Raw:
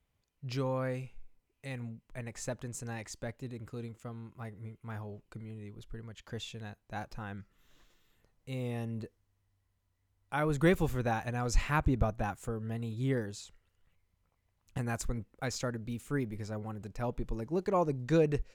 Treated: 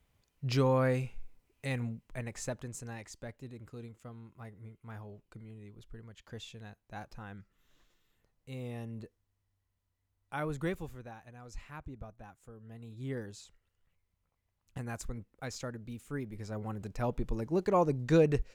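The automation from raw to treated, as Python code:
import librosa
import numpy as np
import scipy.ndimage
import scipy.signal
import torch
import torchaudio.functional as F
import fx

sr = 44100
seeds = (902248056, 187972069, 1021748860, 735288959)

y = fx.gain(x, sr, db=fx.line((1.71, 6.0), (3.08, -4.5), (10.44, -4.5), (11.14, -17.0), (12.38, -17.0), (13.24, -5.0), (16.26, -5.0), (16.7, 2.0)))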